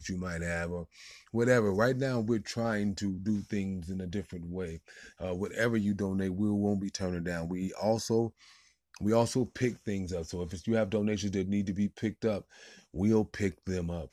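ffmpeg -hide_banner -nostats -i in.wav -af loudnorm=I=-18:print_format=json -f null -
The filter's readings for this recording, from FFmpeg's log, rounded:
"input_i" : "-32.1",
"input_tp" : "-12.2",
"input_lra" : "2.9",
"input_thresh" : "-42.4",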